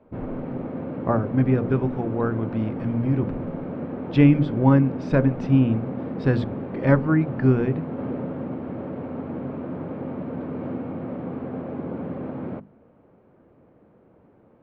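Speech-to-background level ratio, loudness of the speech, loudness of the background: 10.0 dB, -22.0 LUFS, -32.0 LUFS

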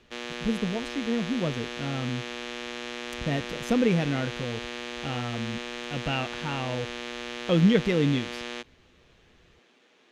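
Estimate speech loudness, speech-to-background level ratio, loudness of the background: -28.5 LUFS, 7.0 dB, -35.5 LUFS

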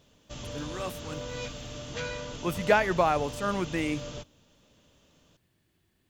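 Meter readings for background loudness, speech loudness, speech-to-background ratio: -39.0 LUFS, -28.5 LUFS, 10.5 dB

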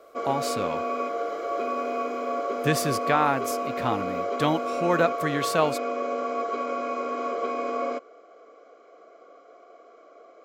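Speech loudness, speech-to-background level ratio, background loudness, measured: -27.0 LUFS, 2.5 dB, -29.5 LUFS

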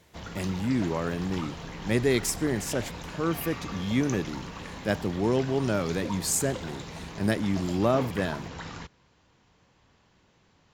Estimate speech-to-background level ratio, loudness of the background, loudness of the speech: 10.5 dB, -39.0 LUFS, -28.5 LUFS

